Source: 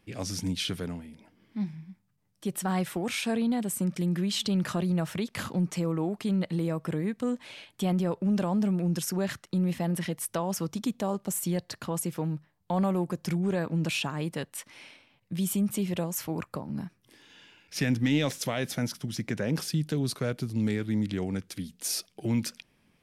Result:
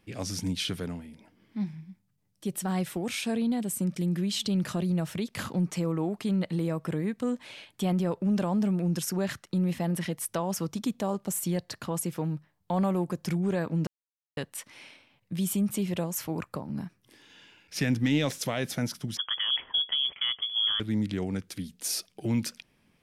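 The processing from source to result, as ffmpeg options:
-filter_complex "[0:a]asettb=1/sr,asplit=3[s0][s1][s2];[s0]atrim=end=1.804[s3];[s1]atrim=start=1.8:end=5.39,asetpts=PTS-STARTPTS,afade=t=in:d=0.004:c=qsin,afade=t=out:st=3.586:d=0.004:c=qsin,equalizer=f=1200:t=o:w=1.9:g=-4.5[s4];[s2]atrim=start=5.386[s5];[s3][s4]acrossfade=d=0.004:c1=hsin:c2=qsin[s6];[s6][s5]acrossfade=d=0.004:c1=qsin:c2=hsin,asettb=1/sr,asplit=3[s7][s8][s9];[s7]atrim=end=19.174[s10];[s8]atrim=start=19.17:end=20.8,asetpts=PTS-STARTPTS,afade=t=in:d=0.004:c=qsin,afade=t=out:st=1.626:d=0.004:c=qsin,lowpass=f=3000:t=q:w=0.5098,lowpass=f=3000:t=q:w=0.6013,lowpass=f=3000:t=q:w=0.9,lowpass=f=3000:t=q:w=2.563,afreqshift=-3500[s11];[s9]atrim=start=20.796[s12];[s10][s11]acrossfade=d=0.004:c1=hsin:c2=qsin[s13];[s13][s12]acrossfade=d=0.004:c1=qsin:c2=hsin,asplit=3[s14][s15][s16];[s14]atrim=end=13.87,asetpts=PTS-STARTPTS,afade=t=out:st=13.866:d=0.004:c=hsin[s17];[s15]atrim=start=13.87:end=14.37,asetpts=PTS-STARTPTS,volume=0[s18];[s16]atrim=start=14.37,asetpts=PTS-STARTPTS,afade=t=in:d=0.004:c=hsin[s19];[s17][s18][s19]concat=n=3:v=0:a=1"

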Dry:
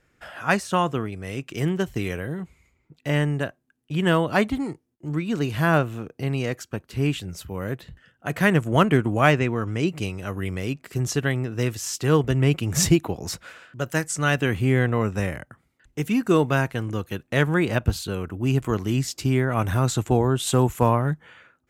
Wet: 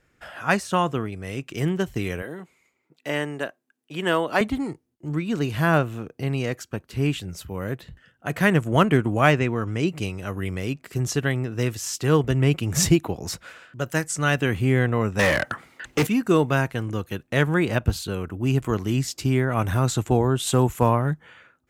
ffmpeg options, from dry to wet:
-filter_complex "[0:a]asettb=1/sr,asplit=3[s0][s1][s2];[s0]atrim=end=2.224[s3];[s1]atrim=start=2.22:end=4.41,asetpts=PTS-STARTPTS,afade=t=in:d=0.004:c=qsin,afade=t=out:st=2.186:d=0.004:c=qsin,highpass=300[s4];[s2]atrim=start=4.406[s5];[s3][s4]acrossfade=d=0.004:c1=hsin:c2=qsin[s6];[s6][s5]acrossfade=d=0.004:c1=qsin:c2=hsin,asettb=1/sr,asplit=3[s7][s8][s9];[s7]atrim=end=15.194[s10];[s8]atrim=start=15.19:end=16.07,asetpts=PTS-STARTPTS,afade=t=in:d=0.004:c=qsin,afade=t=out:st=0.876:d=0.004:c=qsin,asplit=2[s11][s12];[s12]highpass=f=720:p=1,volume=35.5,asoftclip=type=tanh:threshold=0.282[s13];[s11][s13]amix=inputs=2:normalize=0,lowpass=f=3700:p=1,volume=0.501[s14];[s9]atrim=start=16.066[s15];[s10][s14]acrossfade=d=0.004:c1=hsin:c2=qsin[s16];[s16][s15]acrossfade=d=0.004:c1=qsin:c2=hsin"

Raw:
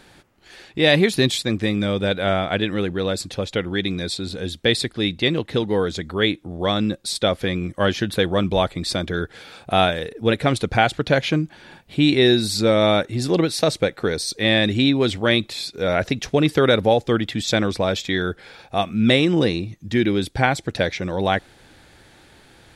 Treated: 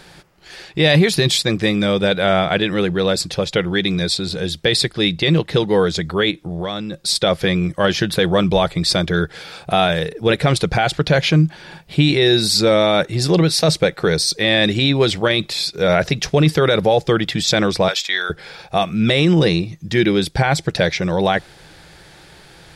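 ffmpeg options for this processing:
-filter_complex "[0:a]asplit=3[s0][s1][s2];[s0]afade=t=out:st=6.3:d=0.02[s3];[s1]acompressor=threshold=0.0501:ratio=6:attack=3.2:release=140:knee=1:detection=peak,afade=t=in:st=6.3:d=0.02,afade=t=out:st=7.07:d=0.02[s4];[s2]afade=t=in:st=7.07:d=0.02[s5];[s3][s4][s5]amix=inputs=3:normalize=0,asettb=1/sr,asplit=3[s6][s7][s8];[s6]atrim=end=17.884[s9];[s7]atrim=start=17.88:end=18.3,asetpts=PTS-STARTPTS,afade=t=in:d=0.004:c=qsin,afade=t=out:st=0.416:d=0.004:c=qsin,highpass=910[s10];[s8]atrim=start=18.296[s11];[s9][s10]acrossfade=d=0.004:c1=hsin:c2=qsin[s12];[s12][s11]acrossfade=d=0.004:c1=qsin:c2=hsin,equalizer=f=100:t=o:w=0.33:g=-7,equalizer=f=160:t=o:w=0.33:g=8,equalizer=f=250:t=o:w=0.33:g=-12,equalizer=f=5000:t=o:w=0.33:g=5,alimiter=limit=0.266:level=0:latency=1:release=13,volume=2"

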